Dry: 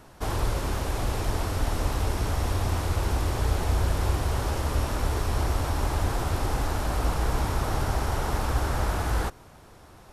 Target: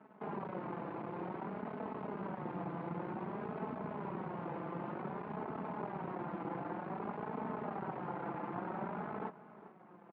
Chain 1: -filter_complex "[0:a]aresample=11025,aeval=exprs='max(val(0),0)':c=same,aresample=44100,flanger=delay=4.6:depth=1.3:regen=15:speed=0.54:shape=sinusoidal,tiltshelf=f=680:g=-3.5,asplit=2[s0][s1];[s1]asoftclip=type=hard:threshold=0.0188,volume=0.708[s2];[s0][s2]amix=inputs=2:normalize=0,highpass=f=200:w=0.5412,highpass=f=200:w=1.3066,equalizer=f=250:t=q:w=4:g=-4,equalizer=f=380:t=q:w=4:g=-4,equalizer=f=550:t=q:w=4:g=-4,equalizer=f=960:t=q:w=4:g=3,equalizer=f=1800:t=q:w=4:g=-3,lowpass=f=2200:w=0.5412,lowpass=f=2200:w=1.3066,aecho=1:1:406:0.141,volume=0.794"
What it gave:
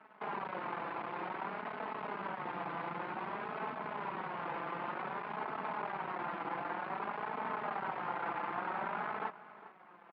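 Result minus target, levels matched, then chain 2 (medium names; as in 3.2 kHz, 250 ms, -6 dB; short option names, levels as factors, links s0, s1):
500 Hz band -3.0 dB
-filter_complex "[0:a]aresample=11025,aeval=exprs='max(val(0),0)':c=same,aresample=44100,flanger=delay=4.6:depth=1.3:regen=15:speed=0.54:shape=sinusoidal,tiltshelf=f=680:g=7,asplit=2[s0][s1];[s1]asoftclip=type=hard:threshold=0.0188,volume=0.708[s2];[s0][s2]amix=inputs=2:normalize=0,highpass=f=200:w=0.5412,highpass=f=200:w=1.3066,equalizer=f=250:t=q:w=4:g=-4,equalizer=f=380:t=q:w=4:g=-4,equalizer=f=550:t=q:w=4:g=-4,equalizer=f=960:t=q:w=4:g=3,equalizer=f=1800:t=q:w=4:g=-3,lowpass=f=2200:w=0.5412,lowpass=f=2200:w=1.3066,aecho=1:1:406:0.141,volume=0.794"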